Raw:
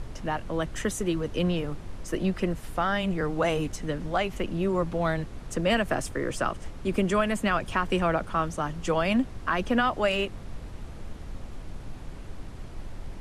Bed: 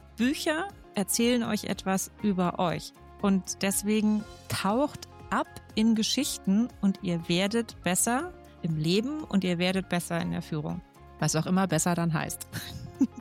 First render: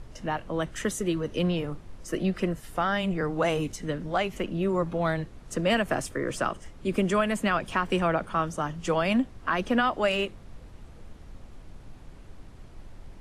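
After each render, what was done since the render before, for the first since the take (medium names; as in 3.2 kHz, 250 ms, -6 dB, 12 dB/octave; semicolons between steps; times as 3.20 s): noise print and reduce 7 dB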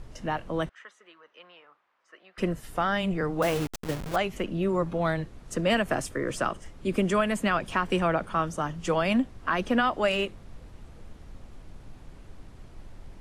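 0.69–2.38 s: ladder band-pass 1.5 kHz, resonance 25%; 3.42–4.16 s: send-on-delta sampling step -29 dBFS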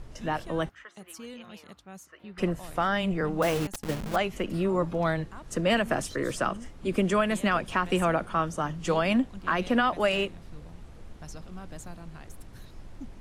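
add bed -18.5 dB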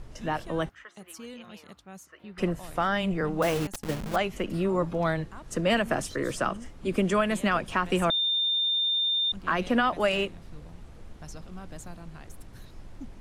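8.10–9.32 s: bleep 3.61 kHz -23 dBFS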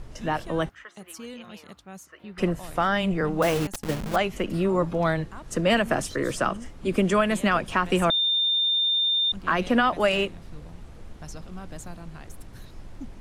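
trim +3 dB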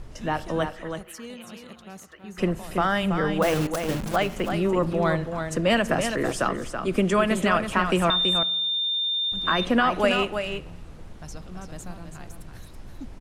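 delay 329 ms -7 dB; spring tank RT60 1 s, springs 39 ms, chirp 45 ms, DRR 19 dB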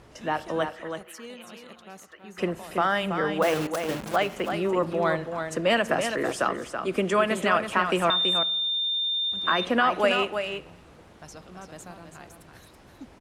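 high-pass 63 Hz; tone controls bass -9 dB, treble -3 dB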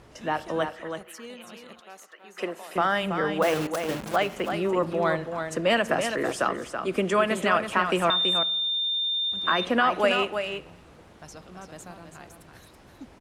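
1.80–2.76 s: high-pass 400 Hz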